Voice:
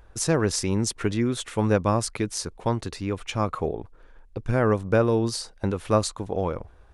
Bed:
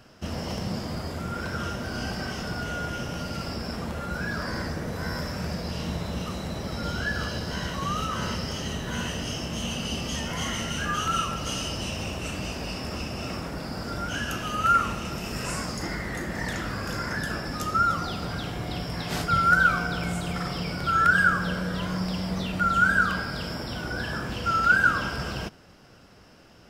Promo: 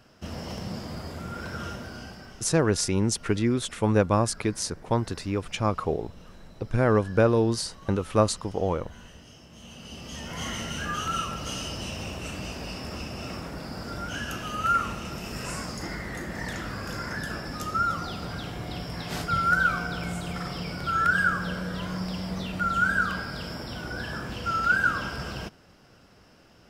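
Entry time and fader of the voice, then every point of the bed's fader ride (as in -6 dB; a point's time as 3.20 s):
2.25 s, 0.0 dB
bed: 1.73 s -4 dB
2.51 s -18.5 dB
9.48 s -18.5 dB
10.46 s -3 dB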